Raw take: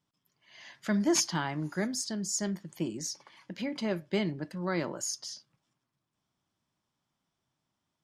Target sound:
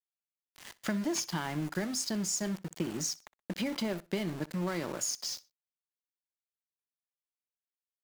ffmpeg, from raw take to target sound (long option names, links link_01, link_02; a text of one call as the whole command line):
ffmpeg -i in.wav -filter_complex "[0:a]acompressor=threshold=-35dB:ratio=8,aeval=exprs='val(0)*gte(abs(val(0)),0.00562)':channel_layout=same,asplit=2[link_01][link_02];[link_02]aecho=0:1:62|124:0.0841|0.0252[link_03];[link_01][link_03]amix=inputs=2:normalize=0,volume=5.5dB" out.wav